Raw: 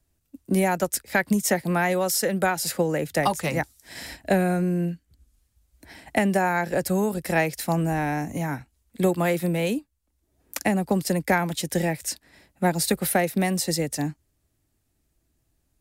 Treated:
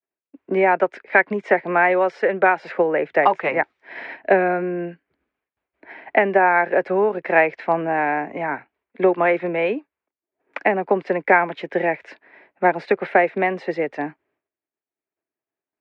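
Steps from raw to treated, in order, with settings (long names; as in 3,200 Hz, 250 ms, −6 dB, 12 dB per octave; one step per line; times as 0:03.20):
downward expander −58 dBFS
loudspeaker in its box 400–2,400 Hz, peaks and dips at 400 Hz +7 dB, 660 Hz +3 dB, 980 Hz +4 dB, 1,600 Hz +3 dB, 2,300 Hz +5 dB
level +5 dB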